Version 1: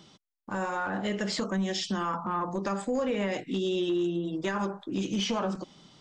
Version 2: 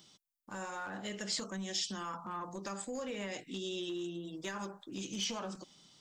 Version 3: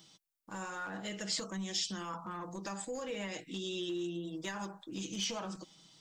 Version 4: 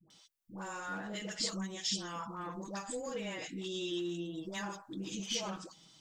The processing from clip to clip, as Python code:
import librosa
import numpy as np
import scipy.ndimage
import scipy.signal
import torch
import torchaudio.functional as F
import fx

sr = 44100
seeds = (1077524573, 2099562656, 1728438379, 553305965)

y1 = librosa.effects.preemphasis(x, coef=0.8, zi=[0.0])
y1 = y1 * 10.0 ** (2.0 / 20.0)
y2 = y1 + 0.42 * np.pad(y1, (int(6.2 * sr / 1000.0), 0))[:len(y1)]
y3 = fx.dispersion(y2, sr, late='highs', ms=104.0, hz=570.0)